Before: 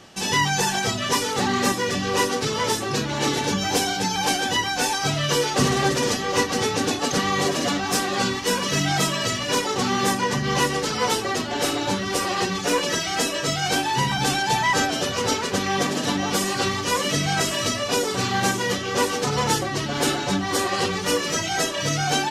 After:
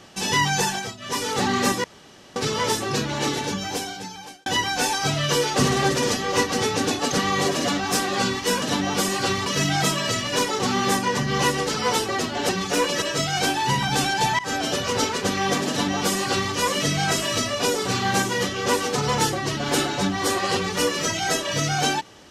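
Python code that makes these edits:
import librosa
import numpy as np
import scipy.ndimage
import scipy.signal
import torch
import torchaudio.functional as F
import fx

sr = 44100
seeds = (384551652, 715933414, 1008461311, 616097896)

y = fx.edit(x, sr, fx.fade_down_up(start_s=0.62, length_s=0.7, db=-17.0, fade_s=0.35),
    fx.room_tone_fill(start_s=1.84, length_s=0.52),
    fx.fade_out_span(start_s=3.01, length_s=1.45),
    fx.cut(start_s=11.65, length_s=0.78),
    fx.cut(start_s=12.96, length_s=0.35),
    fx.fade_in_from(start_s=14.68, length_s=0.25, floor_db=-20.5),
    fx.duplicate(start_s=15.98, length_s=0.84, to_s=8.62), tone=tone)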